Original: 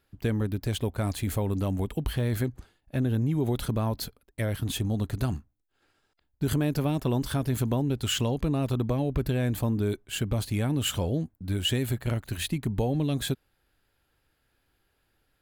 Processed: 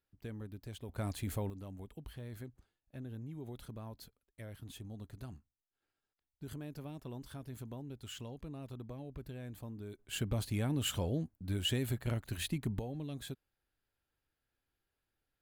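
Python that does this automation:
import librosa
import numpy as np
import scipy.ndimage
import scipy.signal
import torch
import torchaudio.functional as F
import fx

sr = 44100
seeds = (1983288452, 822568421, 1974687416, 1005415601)

y = fx.gain(x, sr, db=fx.steps((0.0, -17.5), (0.89, -9.0), (1.5, -19.0), (9.99, -7.0), (12.79, -15.0)))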